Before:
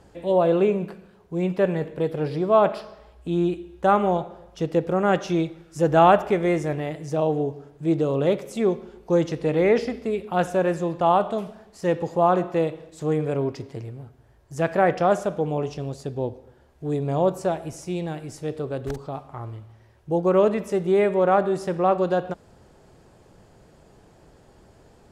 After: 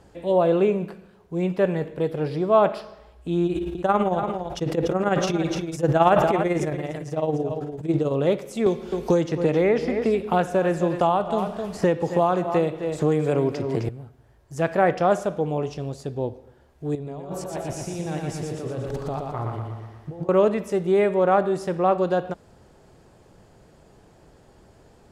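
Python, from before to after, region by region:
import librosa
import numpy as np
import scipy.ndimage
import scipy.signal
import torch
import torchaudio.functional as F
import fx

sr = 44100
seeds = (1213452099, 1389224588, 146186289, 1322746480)

y = fx.chain(x, sr, fx.tremolo(hz=18.0, depth=0.8),
    fx.echo_single(ms=289, db=-12.5),
    fx.sustainer(db_per_s=27.0), at=(3.46, 8.13))
y = fx.chain(y, sr, fx.echo_single(ms=261, db=-12.5),
    fx.band_squash(depth_pct=100), at=(8.66, 13.89))
y = fx.chain(y, sr, fx.high_shelf(hz=6200.0, db=-4.5),
    fx.over_compress(threshold_db=-32.0, ratio=-1.0),
    fx.echo_feedback(ms=119, feedback_pct=57, wet_db=-3.5), at=(16.95, 20.29))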